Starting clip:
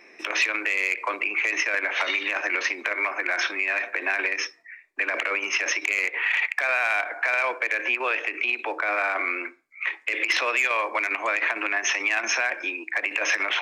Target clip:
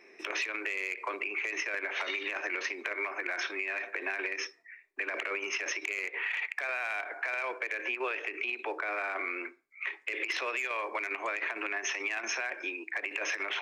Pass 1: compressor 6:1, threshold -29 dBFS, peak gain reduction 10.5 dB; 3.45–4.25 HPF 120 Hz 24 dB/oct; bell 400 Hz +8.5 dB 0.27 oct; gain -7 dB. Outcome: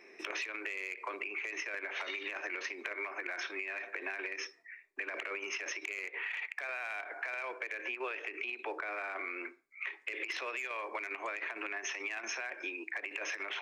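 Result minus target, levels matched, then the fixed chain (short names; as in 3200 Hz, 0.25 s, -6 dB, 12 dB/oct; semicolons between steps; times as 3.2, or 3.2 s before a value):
compressor: peak gain reduction +5.5 dB
compressor 6:1, threshold -22.5 dBFS, peak gain reduction 5 dB; 3.45–4.25 HPF 120 Hz 24 dB/oct; bell 400 Hz +8.5 dB 0.27 oct; gain -7 dB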